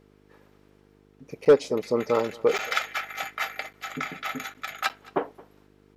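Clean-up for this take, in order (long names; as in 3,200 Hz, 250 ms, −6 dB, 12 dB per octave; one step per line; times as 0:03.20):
clipped peaks rebuilt −9.5 dBFS
hum removal 50.5 Hz, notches 9
repair the gap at 0:01.45/0:02.58/0:03.73/0:04.54/0:04.89, 7.9 ms
echo removal 221 ms −23 dB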